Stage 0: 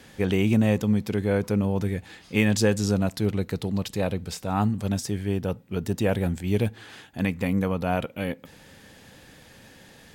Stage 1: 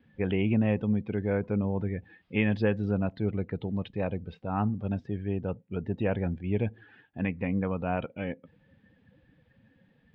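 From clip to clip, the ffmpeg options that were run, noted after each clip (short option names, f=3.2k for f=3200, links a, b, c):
-af "lowpass=f=3.3k:w=0.5412,lowpass=f=3.3k:w=1.3066,afftdn=nr=16:nf=-41,volume=-4.5dB"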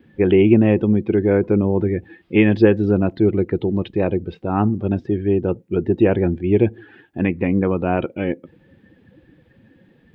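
-af "equalizer=f=350:w=3.6:g=15,volume=8.5dB"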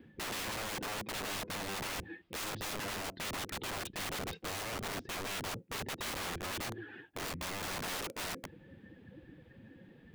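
-af "areverse,acompressor=threshold=-22dB:ratio=12,areverse,aeval=exprs='(mod(33.5*val(0)+1,2)-1)/33.5':c=same,volume=-3.5dB"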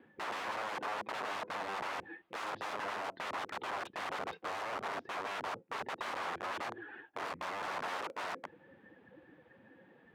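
-af "bandpass=f=970:t=q:w=1.1:csg=0,volume=5.5dB"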